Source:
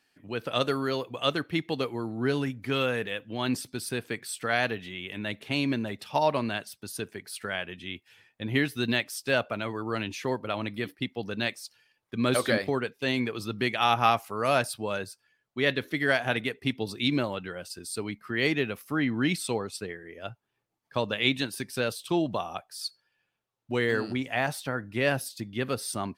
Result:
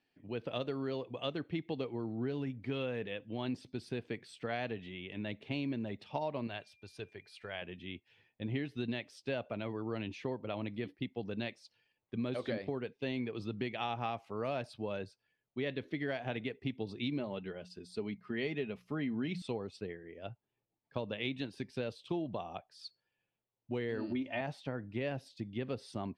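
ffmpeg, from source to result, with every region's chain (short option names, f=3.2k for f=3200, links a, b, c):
-filter_complex "[0:a]asettb=1/sr,asplit=3[a][b][c];[a]atrim=end=6.474[d];[b]atrim=start=6.47:end=7.62,asetpts=PTS-STARTPTS,afade=t=in:d=0.004:c=qsin,afade=t=out:st=1.146:d=0.004:c=qsin,equalizer=f=230:w=1:g=-11.5,aeval=exprs='val(0)+0.00112*sin(2*PI*2400*n/s)':c=same[e];[c]atrim=start=7.616[f];[d][e]acrossfade=d=0.004:c1=hsin:c2=qsin[g];[g][f]acrossfade=d=0.004:c1=qsin:c2=hsin,asettb=1/sr,asplit=3[h][i][j];[h]atrim=end=17.194[k];[i]atrim=start=17.19:end=19.42,asetpts=PTS-STARTPTS,afade=t=in:d=0.004:c=qsin,afade=t=out:st=2.226:d=0.004:c=qsin,bandreject=f=60:t=h:w=6,bandreject=f=120:t=h:w=6,bandreject=f=180:t=h:w=6,aecho=1:1:4.8:0.39,atrim=end_sample=98343[l];[j]atrim=start=19.416[m];[k][l]acrossfade=d=0.004:c1=hsin:c2=qsin[n];[n][m]acrossfade=d=0.004:c1=qsin:c2=hsin,asettb=1/sr,asplit=3[o][p][q];[o]atrim=end=23.984[r];[p]atrim=start=23.98:end=24.41,asetpts=PTS-STARTPTS,afade=t=in:d=0.004:c=qsin,afade=t=out:st=0.426:d=0.004:c=qsin,lowpass=5.5k,aecho=1:1:3.3:0.83,atrim=end_sample=18963[s];[q]atrim=start=24.406[t];[r][s]acrossfade=d=0.004:c1=hsin:c2=qsin[u];[u][t]acrossfade=d=0.004:c1=qsin:c2=hsin,lowpass=2.8k,equalizer=f=1.4k:w=1.2:g=-10,acompressor=threshold=-29dB:ratio=6,volume=-3.5dB"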